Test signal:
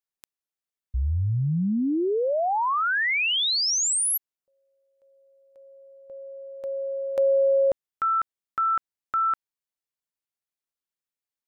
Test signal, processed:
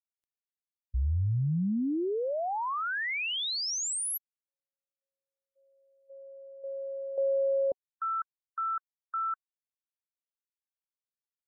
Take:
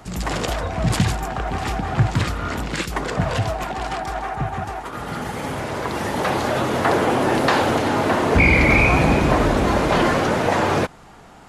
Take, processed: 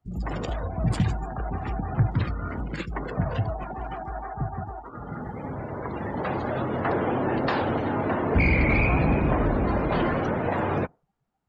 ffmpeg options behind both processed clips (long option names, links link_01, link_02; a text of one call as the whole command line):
ffmpeg -i in.wav -af "aeval=exprs='clip(val(0),-1,0.282)':channel_layout=same,afftdn=noise_reduction=31:noise_floor=-29,lowshelf=frequency=320:gain=5.5,volume=-8.5dB" out.wav